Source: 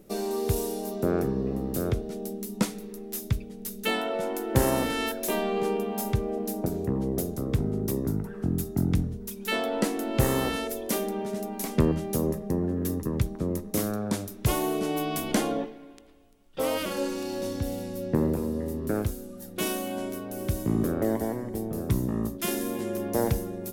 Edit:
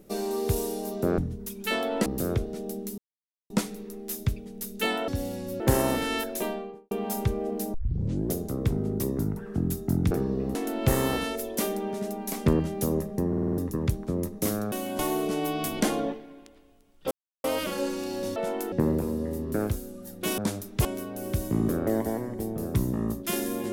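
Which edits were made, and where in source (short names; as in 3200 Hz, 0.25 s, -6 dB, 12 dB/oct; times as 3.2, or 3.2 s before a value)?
1.18–1.62 swap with 8.99–9.87
2.54 insert silence 0.52 s
4.12–4.48 swap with 17.55–18.07
5.13–5.79 studio fade out
6.62 tape start 0.58 s
12.6 stutter in place 0.05 s, 6 plays
14.04–14.51 swap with 19.73–20
16.63 insert silence 0.33 s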